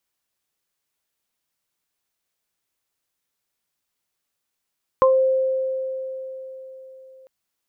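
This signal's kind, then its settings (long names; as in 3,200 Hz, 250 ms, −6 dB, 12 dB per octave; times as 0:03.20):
harmonic partials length 2.25 s, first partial 525 Hz, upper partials 1 dB, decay 4.07 s, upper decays 0.22 s, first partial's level −12 dB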